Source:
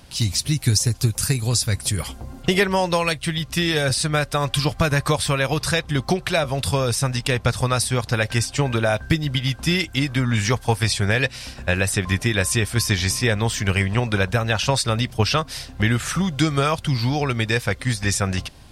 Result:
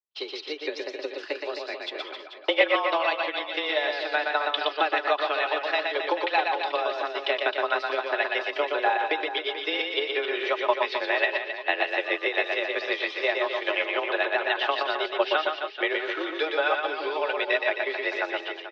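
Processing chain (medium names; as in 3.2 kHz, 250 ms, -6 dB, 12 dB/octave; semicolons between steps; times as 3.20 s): gate -29 dBFS, range -53 dB; comb 4.5 ms, depth 44%; reverse; upward compressor, threshold -25 dBFS; reverse; transient shaper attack +5 dB, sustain -3 dB; on a send: reverse bouncing-ball echo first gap 120 ms, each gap 1.2×, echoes 5; on the sum: mistuned SSB +150 Hz 250–3600 Hz; trim -6.5 dB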